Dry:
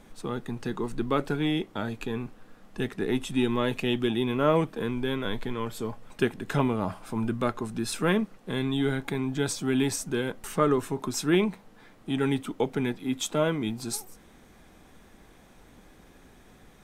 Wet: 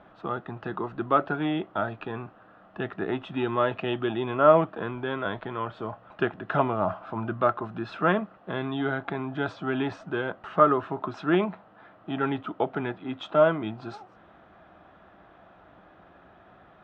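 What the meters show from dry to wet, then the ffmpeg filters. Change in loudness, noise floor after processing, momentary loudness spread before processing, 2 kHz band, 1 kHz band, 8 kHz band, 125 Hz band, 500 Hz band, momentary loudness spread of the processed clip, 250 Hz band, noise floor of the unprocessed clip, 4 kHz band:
+1.0 dB, -55 dBFS, 9 LU, +2.0 dB, +6.5 dB, under -30 dB, -3.0 dB, +2.5 dB, 14 LU, -2.5 dB, -55 dBFS, -6.0 dB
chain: -af "highpass=100,equalizer=f=140:t=q:w=4:g=-6,equalizer=f=240:t=q:w=4:g=-10,equalizer=f=450:t=q:w=4:g=-7,equalizer=f=660:t=q:w=4:g=9,equalizer=f=1.3k:t=q:w=4:g=7,equalizer=f=2.2k:t=q:w=4:g=-9,lowpass=f=2.8k:w=0.5412,lowpass=f=2.8k:w=1.3066,volume=2.5dB"

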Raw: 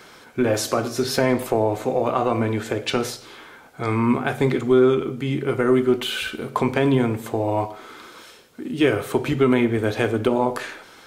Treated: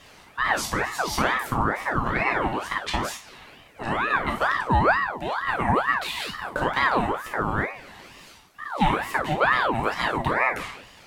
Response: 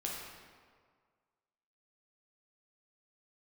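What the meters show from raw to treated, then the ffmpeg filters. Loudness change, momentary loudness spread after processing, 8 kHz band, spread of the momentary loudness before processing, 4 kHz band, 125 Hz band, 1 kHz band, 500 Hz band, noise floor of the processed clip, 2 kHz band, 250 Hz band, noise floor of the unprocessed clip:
-2.5 dB, 10 LU, -3.5 dB, 12 LU, -2.5 dB, -5.5 dB, +4.0 dB, -9.5 dB, -50 dBFS, +5.5 dB, -10.0 dB, -47 dBFS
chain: -filter_complex "[1:a]atrim=start_sample=2205,atrim=end_sample=3087[a];[0:a][a]afir=irnorm=-1:irlink=0,aeval=exprs='val(0)*sin(2*PI*990*n/s+990*0.55/2.2*sin(2*PI*2.2*n/s))':c=same"

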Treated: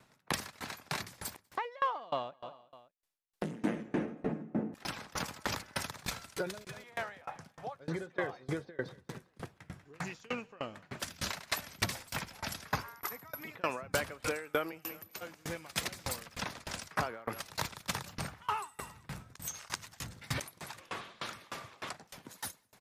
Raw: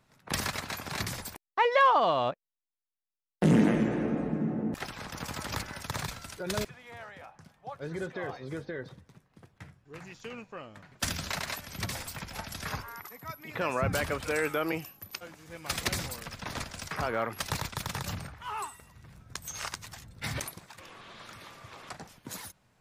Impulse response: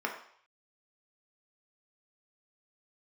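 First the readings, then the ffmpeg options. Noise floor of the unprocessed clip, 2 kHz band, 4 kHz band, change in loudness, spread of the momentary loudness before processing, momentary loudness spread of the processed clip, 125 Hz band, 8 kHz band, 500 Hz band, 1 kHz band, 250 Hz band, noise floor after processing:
under -85 dBFS, -4.0 dB, -3.0 dB, -7.0 dB, 20 LU, 11 LU, -8.0 dB, -3.0 dB, -6.5 dB, -7.0 dB, -8.5 dB, -69 dBFS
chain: -filter_complex "[0:a]lowshelf=f=81:g=-11.5,asplit=2[a][b];[b]aecho=0:1:191|382|573:0.0944|0.0368|0.0144[c];[a][c]amix=inputs=2:normalize=0,dynaudnorm=f=490:g=11:m=9dB,asplit=2[d][e];[e]alimiter=limit=-15.5dB:level=0:latency=1:release=104,volume=-1dB[f];[d][f]amix=inputs=2:normalize=0,acompressor=threshold=-35dB:ratio=2.5,aresample=32000,aresample=44100,aeval=exprs='val(0)*pow(10,-28*if(lt(mod(3.3*n/s,1),2*abs(3.3)/1000),1-mod(3.3*n/s,1)/(2*abs(3.3)/1000),(mod(3.3*n/s,1)-2*abs(3.3)/1000)/(1-2*abs(3.3)/1000))/20)':c=same,volume=3dB"

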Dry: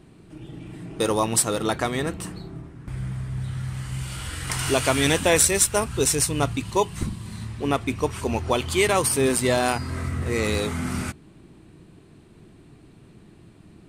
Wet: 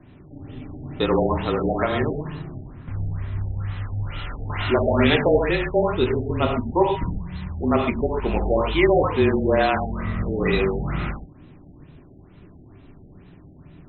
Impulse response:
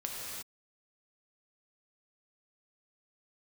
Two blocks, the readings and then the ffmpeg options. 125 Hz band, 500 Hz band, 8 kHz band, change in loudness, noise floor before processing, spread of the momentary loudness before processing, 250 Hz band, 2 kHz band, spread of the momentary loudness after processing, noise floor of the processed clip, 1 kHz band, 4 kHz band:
+2.0 dB, +3.5 dB, under -40 dB, +1.0 dB, -51 dBFS, 15 LU, +3.5 dB, +0.5 dB, 15 LU, -48 dBFS, +2.0 dB, -3.5 dB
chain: -filter_complex "[0:a]afreqshift=-31,bandreject=f=317.9:t=h:w=4,bandreject=f=635.8:t=h:w=4,bandreject=f=953.7:t=h:w=4,bandreject=f=1.2716k:t=h:w=4,bandreject=f=1.5895k:t=h:w=4,bandreject=f=1.9074k:t=h:w=4,bandreject=f=2.2253k:t=h:w=4[a];[1:a]atrim=start_sample=2205,atrim=end_sample=6174[b];[a][b]afir=irnorm=-1:irlink=0,afftfilt=real='re*lt(b*sr/1024,810*pow(4200/810,0.5+0.5*sin(2*PI*2.2*pts/sr)))':imag='im*lt(b*sr/1024,810*pow(4200/810,0.5+0.5*sin(2*PI*2.2*pts/sr)))':win_size=1024:overlap=0.75,volume=3.5dB"

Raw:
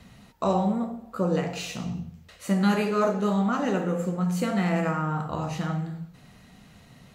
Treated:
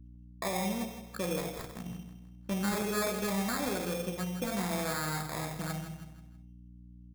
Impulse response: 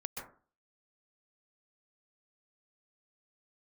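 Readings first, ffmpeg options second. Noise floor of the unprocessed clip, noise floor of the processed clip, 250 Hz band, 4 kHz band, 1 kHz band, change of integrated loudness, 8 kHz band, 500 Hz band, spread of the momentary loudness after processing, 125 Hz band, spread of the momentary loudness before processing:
-53 dBFS, -52 dBFS, -9.5 dB, -1.0 dB, -8.0 dB, -7.5 dB, +3.5 dB, -8.0 dB, 22 LU, -9.5 dB, 11 LU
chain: -filter_complex "[0:a]anlmdn=10,highpass=72,lowshelf=f=210:g=-8,asplit=2[a][b];[b]aeval=exprs='sgn(val(0))*max(abs(val(0))-0.00398,0)':c=same,volume=-4.5dB[c];[a][c]amix=inputs=2:normalize=0,acrusher=samples=15:mix=1:aa=0.000001,alimiter=limit=-17dB:level=0:latency=1:release=30,aeval=exprs='val(0)+0.00891*(sin(2*PI*60*n/s)+sin(2*PI*2*60*n/s)/2+sin(2*PI*3*60*n/s)/3+sin(2*PI*4*60*n/s)/4+sin(2*PI*5*60*n/s)/5)':c=same,aecho=1:1:161|322|483|644:0.299|0.125|0.0527|0.0221,adynamicequalizer=threshold=0.00501:dfrequency=6100:dqfactor=0.7:tfrequency=6100:tqfactor=0.7:attack=5:release=100:ratio=0.375:range=3:mode=boostabove:tftype=highshelf,volume=-8.5dB"

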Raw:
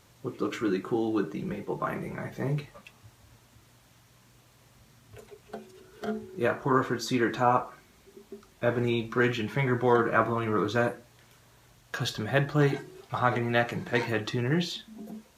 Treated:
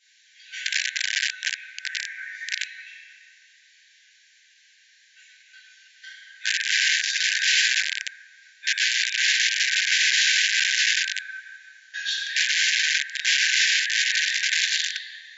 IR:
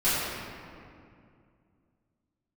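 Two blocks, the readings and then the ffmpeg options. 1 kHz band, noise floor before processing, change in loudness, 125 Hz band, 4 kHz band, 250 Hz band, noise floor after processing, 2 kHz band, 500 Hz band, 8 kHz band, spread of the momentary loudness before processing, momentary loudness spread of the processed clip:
under -35 dB, -60 dBFS, +7.5 dB, under -40 dB, +19.0 dB, under -40 dB, -58 dBFS, +12.0 dB, under -40 dB, +22.5 dB, 14 LU, 14 LU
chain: -filter_complex "[1:a]atrim=start_sample=2205,asetrate=37485,aresample=44100[a];[0:a][a]afir=irnorm=-1:irlink=0,aeval=exprs='(mod(2.11*val(0)+1,2)-1)/2.11':c=same,afftfilt=real='re*between(b*sr/4096,1500,7400)':imag='im*between(b*sr/4096,1500,7400)':win_size=4096:overlap=0.75,volume=-5.5dB"

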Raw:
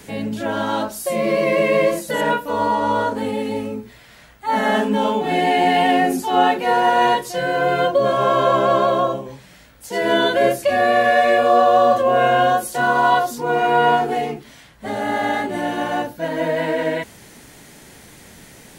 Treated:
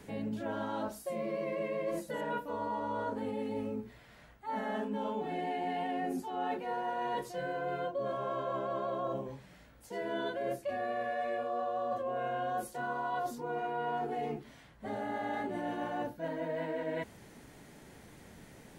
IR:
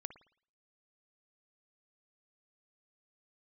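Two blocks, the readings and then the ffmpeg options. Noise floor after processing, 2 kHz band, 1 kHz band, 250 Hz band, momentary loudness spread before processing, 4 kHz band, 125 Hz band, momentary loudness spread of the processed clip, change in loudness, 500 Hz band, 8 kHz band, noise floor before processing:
-57 dBFS, -20.5 dB, -19.0 dB, -15.5 dB, 10 LU, -23.5 dB, -15.0 dB, 11 LU, -18.5 dB, -18.0 dB, -21.0 dB, -46 dBFS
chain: -af "highshelf=f=2.1k:g=-9.5,areverse,acompressor=threshold=-25dB:ratio=6,areverse,volume=-8dB"

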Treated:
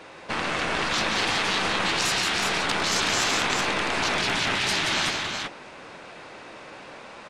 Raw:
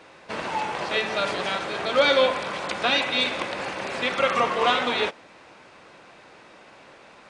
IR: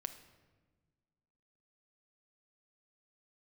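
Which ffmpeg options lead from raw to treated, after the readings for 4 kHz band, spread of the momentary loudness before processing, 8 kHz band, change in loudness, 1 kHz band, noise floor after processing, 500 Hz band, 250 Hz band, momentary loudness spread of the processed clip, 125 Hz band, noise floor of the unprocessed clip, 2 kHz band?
+2.5 dB, 10 LU, +13.5 dB, 0.0 dB, -1.5 dB, -44 dBFS, -7.5 dB, +1.5 dB, 20 LU, +6.0 dB, -50 dBFS, +2.0 dB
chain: -af "aeval=exprs='0.473*(cos(1*acos(clip(val(0)/0.473,-1,1)))-cos(1*PI/2))+0.211*(cos(2*acos(clip(val(0)/0.473,-1,1)))-cos(2*PI/2))+0.211*(cos(4*acos(clip(val(0)/0.473,-1,1)))-cos(4*PI/2))':c=same,afftfilt=real='re*lt(hypot(re,im),0.112)':imag='im*lt(hypot(re,im),0.112)':win_size=1024:overlap=0.75,aecho=1:1:175|373:0.501|0.596,volume=4.5dB"

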